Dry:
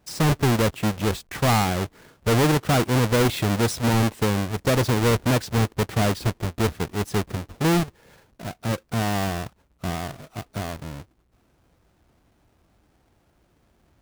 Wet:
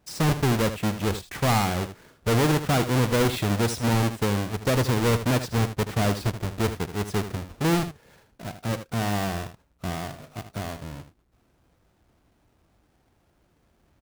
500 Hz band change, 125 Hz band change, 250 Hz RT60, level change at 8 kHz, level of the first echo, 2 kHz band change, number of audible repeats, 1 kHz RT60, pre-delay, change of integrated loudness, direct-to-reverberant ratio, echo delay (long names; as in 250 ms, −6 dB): −2.0 dB, −2.0 dB, no reverb audible, −2.0 dB, −11.0 dB, −2.0 dB, 1, no reverb audible, no reverb audible, −2.0 dB, no reverb audible, 78 ms